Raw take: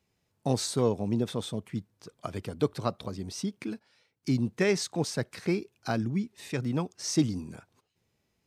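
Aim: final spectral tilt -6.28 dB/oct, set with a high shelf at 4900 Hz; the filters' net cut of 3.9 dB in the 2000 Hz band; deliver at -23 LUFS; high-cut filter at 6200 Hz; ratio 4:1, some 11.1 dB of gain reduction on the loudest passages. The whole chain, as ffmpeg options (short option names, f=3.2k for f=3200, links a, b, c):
-af "lowpass=6.2k,equalizer=f=2k:t=o:g=-3.5,highshelf=f=4.9k:g=-7.5,acompressor=threshold=-33dB:ratio=4,volume=16dB"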